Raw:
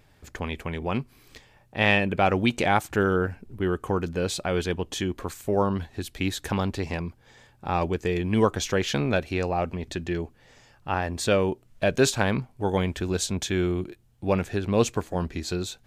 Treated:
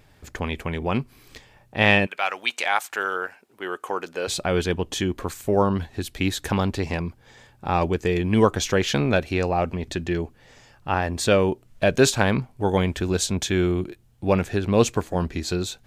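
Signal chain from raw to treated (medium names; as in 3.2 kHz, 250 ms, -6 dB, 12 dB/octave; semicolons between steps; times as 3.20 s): 2.05–4.27 s: high-pass 1.3 kHz -> 490 Hz 12 dB/octave; trim +3.5 dB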